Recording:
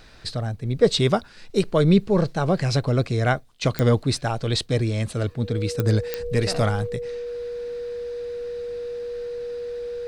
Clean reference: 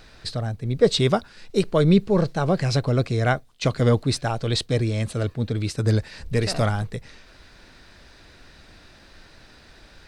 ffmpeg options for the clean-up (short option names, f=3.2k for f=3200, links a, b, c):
-af "adeclick=t=4,bandreject=f=480:w=30"